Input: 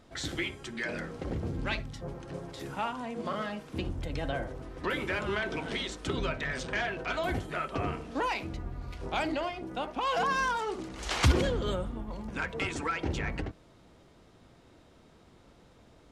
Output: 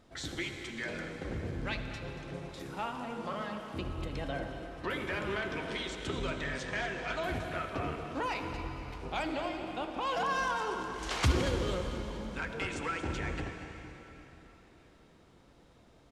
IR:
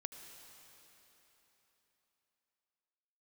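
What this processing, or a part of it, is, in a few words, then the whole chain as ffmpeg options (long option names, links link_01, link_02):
cave: -filter_complex "[0:a]aecho=1:1:232:0.251[link_01];[1:a]atrim=start_sample=2205[link_02];[link_01][link_02]afir=irnorm=-1:irlink=0"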